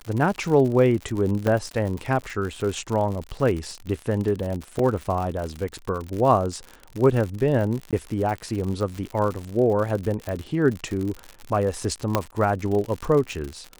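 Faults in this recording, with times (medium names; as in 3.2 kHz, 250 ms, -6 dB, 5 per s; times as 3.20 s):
crackle 92 per s -28 dBFS
1.47 s: dropout 2.1 ms
4.79 s: dropout 2.8 ms
7.91–7.93 s: dropout 17 ms
10.29 s: pop -18 dBFS
12.15 s: pop -6 dBFS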